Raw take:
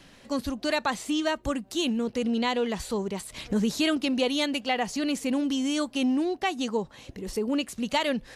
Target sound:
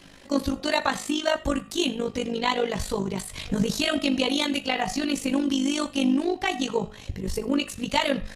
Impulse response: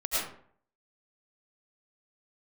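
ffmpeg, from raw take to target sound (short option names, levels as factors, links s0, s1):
-filter_complex "[0:a]bandreject=f=106.2:t=h:w=4,bandreject=f=212.4:t=h:w=4,bandreject=f=318.6:t=h:w=4,bandreject=f=424.8:t=h:w=4,bandreject=f=531:t=h:w=4,bandreject=f=637.2:t=h:w=4,bandreject=f=743.4:t=h:w=4,bandreject=f=849.6:t=h:w=4,bandreject=f=955.8:t=h:w=4,bandreject=f=1062:t=h:w=4,bandreject=f=1168.2:t=h:w=4,bandreject=f=1274.4:t=h:w=4,bandreject=f=1380.6:t=h:w=4,bandreject=f=1486.8:t=h:w=4,bandreject=f=1593:t=h:w=4,bandreject=f=1699.2:t=h:w=4,bandreject=f=1805.4:t=h:w=4,bandreject=f=1911.6:t=h:w=4,bandreject=f=2017.8:t=h:w=4,bandreject=f=2124:t=h:w=4,bandreject=f=2230.2:t=h:w=4,bandreject=f=2336.4:t=h:w=4,bandreject=f=2442.6:t=h:w=4,bandreject=f=2548.8:t=h:w=4,bandreject=f=2655:t=h:w=4,bandreject=f=2761.2:t=h:w=4,bandreject=f=2867.4:t=h:w=4,bandreject=f=2973.6:t=h:w=4,bandreject=f=3079.8:t=h:w=4,bandreject=f=3186:t=h:w=4,bandreject=f=3292.2:t=h:w=4,bandreject=f=3398.4:t=h:w=4,bandreject=f=3504.6:t=h:w=4,bandreject=f=3610.8:t=h:w=4,bandreject=f=3717:t=h:w=4,bandreject=f=3823.2:t=h:w=4,bandreject=f=3929.4:t=h:w=4,asubboost=boost=4:cutoff=120,aecho=1:1:11|43:0.631|0.141,tremolo=f=50:d=0.75,asplit=2[s0][s1];[1:a]atrim=start_sample=2205,atrim=end_sample=3969[s2];[s1][s2]afir=irnorm=-1:irlink=0,volume=0.158[s3];[s0][s3]amix=inputs=2:normalize=0,volume=1.58"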